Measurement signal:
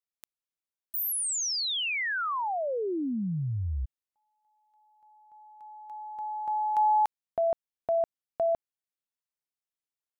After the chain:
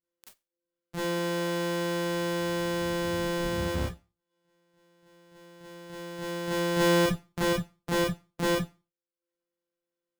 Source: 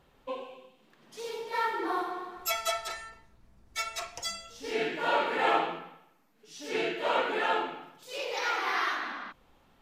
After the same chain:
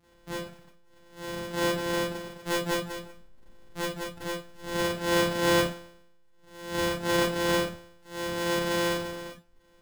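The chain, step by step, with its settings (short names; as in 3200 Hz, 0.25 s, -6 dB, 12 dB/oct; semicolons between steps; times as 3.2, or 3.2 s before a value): sample sorter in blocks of 256 samples; Schroeder reverb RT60 0.32 s, combs from 29 ms, DRR -9.5 dB; reverb removal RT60 0.54 s; gain -5.5 dB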